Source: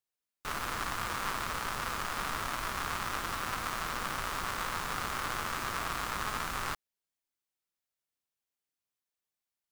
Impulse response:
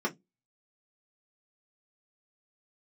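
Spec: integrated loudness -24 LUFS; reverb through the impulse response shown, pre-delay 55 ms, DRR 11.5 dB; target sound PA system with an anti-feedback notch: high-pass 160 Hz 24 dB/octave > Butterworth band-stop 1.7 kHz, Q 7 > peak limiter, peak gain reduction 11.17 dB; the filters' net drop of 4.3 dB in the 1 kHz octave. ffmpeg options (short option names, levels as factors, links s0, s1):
-filter_complex "[0:a]equalizer=f=1000:t=o:g=-5.5,asplit=2[s0][s1];[1:a]atrim=start_sample=2205,adelay=55[s2];[s1][s2]afir=irnorm=-1:irlink=0,volume=0.112[s3];[s0][s3]amix=inputs=2:normalize=0,highpass=f=160:w=0.5412,highpass=f=160:w=1.3066,asuperstop=centerf=1700:order=8:qfactor=7,volume=10.6,alimiter=limit=0.266:level=0:latency=1"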